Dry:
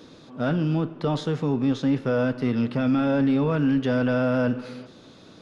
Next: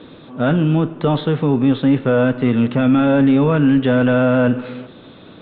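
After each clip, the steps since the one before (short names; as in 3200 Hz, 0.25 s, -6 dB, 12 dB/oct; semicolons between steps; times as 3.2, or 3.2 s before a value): steep low-pass 3800 Hz 72 dB/oct; gain +8 dB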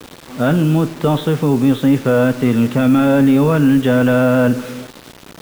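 requantised 6-bit, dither none; gain +1.5 dB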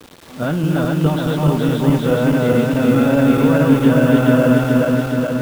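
regenerating reverse delay 0.211 s, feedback 80%, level -0.5 dB; gain -5.5 dB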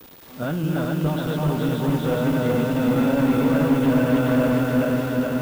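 hard clip -10 dBFS, distortion -14 dB; swelling echo 82 ms, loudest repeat 8, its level -17.5 dB; whine 15000 Hz -40 dBFS; gain -6 dB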